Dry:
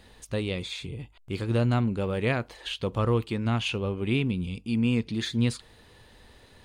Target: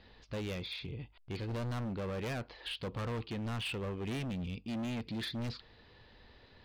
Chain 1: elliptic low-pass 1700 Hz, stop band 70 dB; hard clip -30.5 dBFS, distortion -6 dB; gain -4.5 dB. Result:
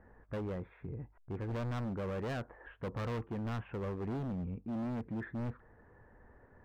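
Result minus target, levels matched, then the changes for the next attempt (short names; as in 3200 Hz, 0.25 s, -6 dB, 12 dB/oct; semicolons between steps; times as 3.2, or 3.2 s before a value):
4000 Hz band -14.5 dB
change: elliptic low-pass 4900 Hz, stop band 70 dB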